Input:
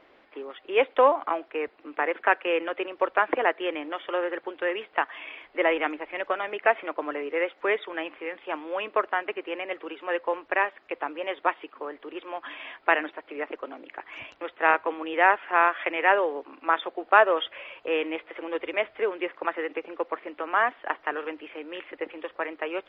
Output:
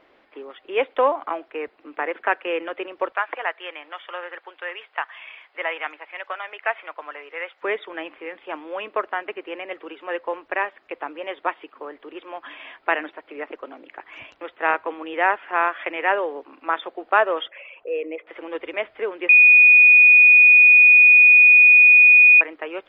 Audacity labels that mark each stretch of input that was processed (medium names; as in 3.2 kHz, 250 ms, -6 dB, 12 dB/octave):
3.120000	7.620000	high-pass 830 Hz
17.470000	18.270000	resonances exaggerated exponent 2
19.290000	22.410000	bleep 2.47 kHz -7.5 dBFS